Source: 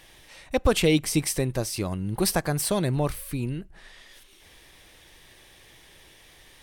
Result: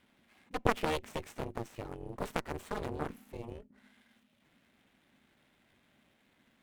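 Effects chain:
running median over 9 samples
ring modulation 230 Hz
harmonic generator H 3 −7 dB, 4 −14 dB, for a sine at −8.5 dBFS
level −2 dB

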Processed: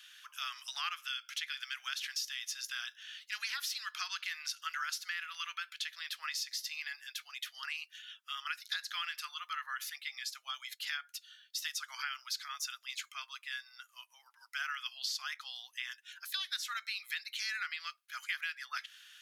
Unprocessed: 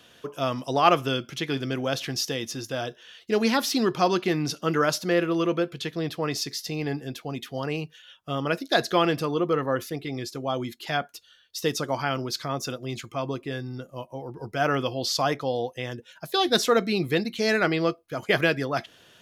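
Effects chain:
Butterworth high-pass 1,400 Hz 36 dB per octave
downward compressor 6 to 1, threshold −35 dBFS, peak gain reduction 15 dB

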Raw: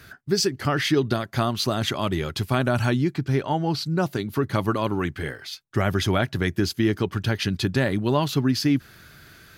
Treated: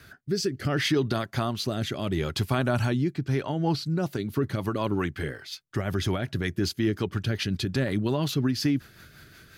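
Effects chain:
brickwall limiter −14.5 dBFS, peak gain reduction 6 dB
rotating-speaker cabinet horn 0.7 Hz, later 5.5 Hz, at 0:03.01

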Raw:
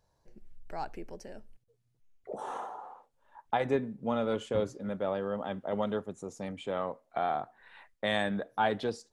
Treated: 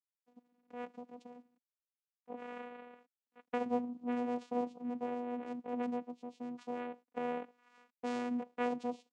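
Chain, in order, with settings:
noise gate −58 dBFS, range −11 dB
bit reduction 11 bits
channel vocoder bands 4, saw 244 Hz
level −5 dB

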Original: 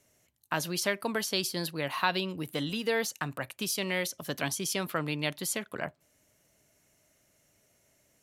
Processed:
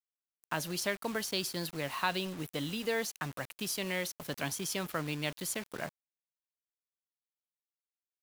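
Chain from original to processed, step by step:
low-shelf EQ 62 Hz +7.5 dB
bit reduction 7 bits
level −4 dB

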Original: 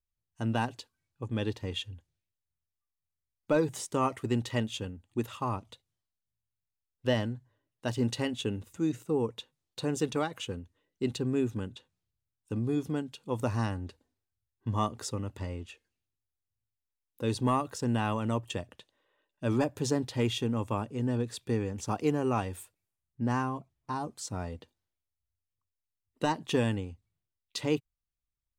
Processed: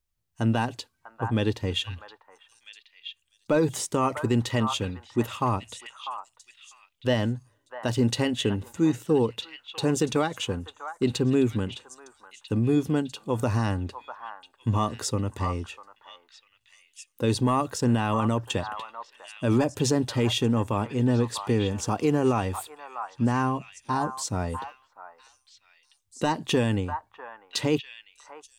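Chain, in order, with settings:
echo through a band-pass that steps 647 ms, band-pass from 1,100 Hz, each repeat 1.4 octaves, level −7 dB
brickwall limiter −20.5 dBFS, peak gain reduction 5 dB
level +7.5 dB

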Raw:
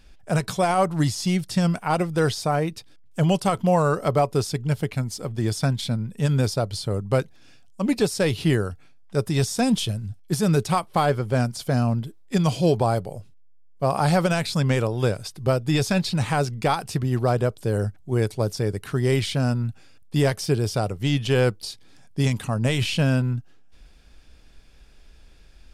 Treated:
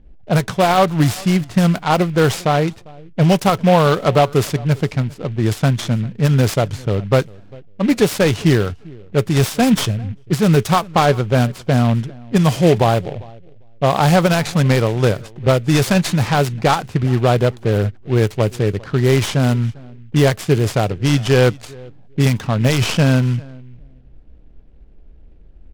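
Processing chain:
on a send: repeating echo 399 ms, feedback 18%, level −23 dB
on the sum: low-pass that shuts in the quiet parts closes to 450 Hz, open at −17 dBFS
short delay modulated by noise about 2,100 Hz, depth 0.042 ms
level +7 dB

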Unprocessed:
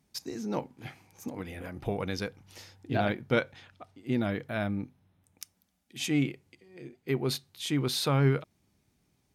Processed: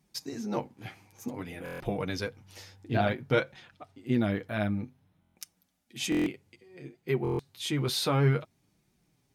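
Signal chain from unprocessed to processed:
flanger 0.56 Hz, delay 5.2 ms, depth 5.4 ms, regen −19%
buffer that repeats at 0:01.64/0:05.20/0:06.10/0:07.23, samples 1,024, times 6
level +4 dB

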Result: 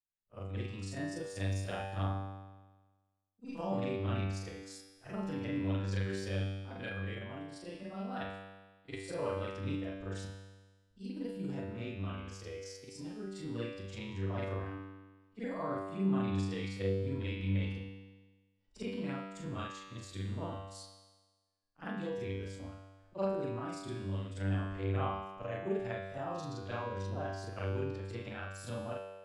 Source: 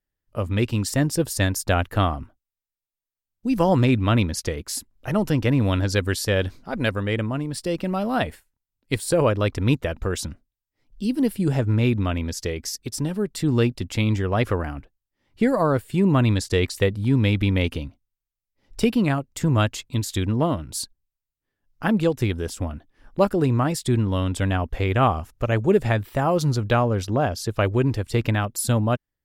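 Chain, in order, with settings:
every overlapping window played backwards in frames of 103 ms
low-pass filter 8,400 Hz 24 dB per octave
low-shelf EQ 130 Hz −4 dB
tuned comb filter 97 Hz, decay 1.3 s, harmonics all, mix 90%

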